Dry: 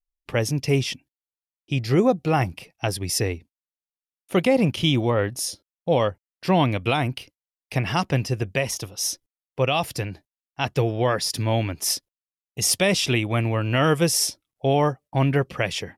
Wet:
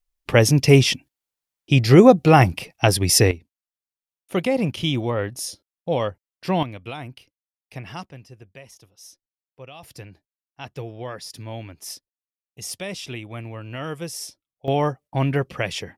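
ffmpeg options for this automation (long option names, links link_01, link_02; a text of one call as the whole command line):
ffmpeg -i in.wav -af "asetnsamples=nb_out_samples=441:pad=0,asendcmd='3.31 volume volume -2.5dB;6.63 volume volume -11.5dB;8.06 volume volume -19.5dB;9.83 volume volume -11.5dB;14.68 volume volume -1dB',volume=8dB" out.wav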